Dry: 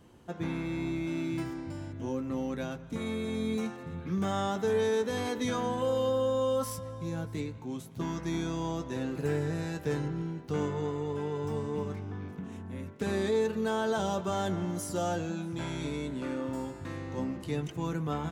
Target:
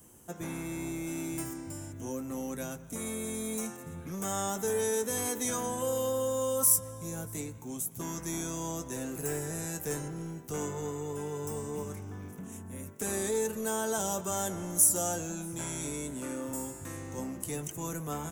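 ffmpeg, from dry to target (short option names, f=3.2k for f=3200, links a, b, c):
-filter_complex "[0:a]acrossover=split=320|1800[a][b][c];[a]volume=36dB,asoftclip=hard,volume=-36dB[d];[d][b][c]amix=inputs=3:normalize=0,aexciter=amount=14:drive=2.6:freq=6.3k,volume=-2.5dB"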